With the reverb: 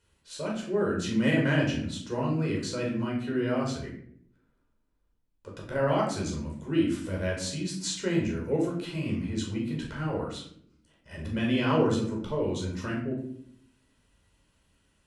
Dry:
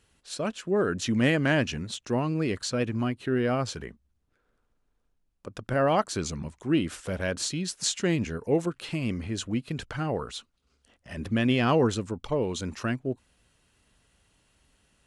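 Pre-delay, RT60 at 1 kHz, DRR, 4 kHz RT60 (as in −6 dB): 11 ms, 0.55 s, −2.5 dB, 0.40 s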